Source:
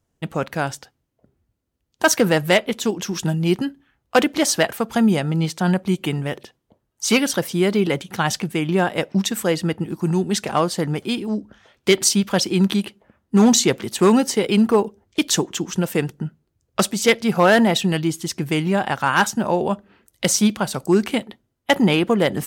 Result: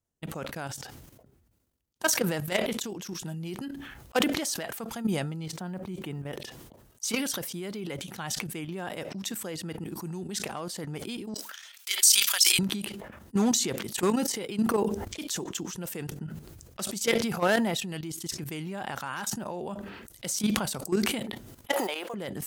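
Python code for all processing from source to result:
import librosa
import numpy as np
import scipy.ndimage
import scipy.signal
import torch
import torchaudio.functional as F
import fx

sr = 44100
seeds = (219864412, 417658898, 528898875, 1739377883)

y = fx.chain(x, sr, fx.block_float(bits=7),
    fx.high_shelf(hz=2200.0, db=-10.5), at=(5.46, 6.33))
y = fx.chain(y, sr, fx.highpass(hz=1400.0, slope=12),
    fx.tilt_eq(slope=3.5), at=(11.34, 12.59))
y = fx.chain(y, sr, fx.law_mismatch(coded='mu'),
    fx.transient(attack_db=1, sustain_db=5),
    fx.ladder_highpass(hz=460.0, resonance_pct=30), at=(21.72, 22.14))
y = fx.level_steps(y, sr, step_db=13)
y = fx.high_shelf(y, sr, hz=5700.0, db=8.0)
y = fx.sustainer(y, sr, db_per_s=40.0)
y = y * 10.0 ** (-9.5 / 20.0)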